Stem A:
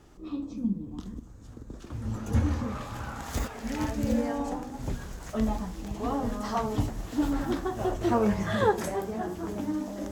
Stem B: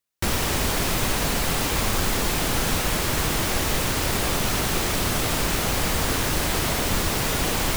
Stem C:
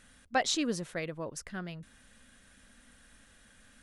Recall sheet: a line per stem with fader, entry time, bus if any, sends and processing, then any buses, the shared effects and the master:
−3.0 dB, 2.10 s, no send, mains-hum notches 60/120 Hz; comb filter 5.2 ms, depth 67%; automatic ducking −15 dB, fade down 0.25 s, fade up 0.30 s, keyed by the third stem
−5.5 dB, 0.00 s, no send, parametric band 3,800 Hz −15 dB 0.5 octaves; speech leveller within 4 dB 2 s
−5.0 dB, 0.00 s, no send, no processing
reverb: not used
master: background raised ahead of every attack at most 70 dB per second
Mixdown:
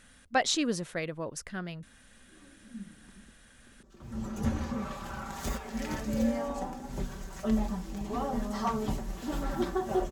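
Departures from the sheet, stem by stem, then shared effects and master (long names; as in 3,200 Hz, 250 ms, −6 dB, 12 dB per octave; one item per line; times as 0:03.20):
stem B: muted
stem C −5.0 dB → +2.0 dB
master: missing background raised ahead of every attack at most 70 dB per second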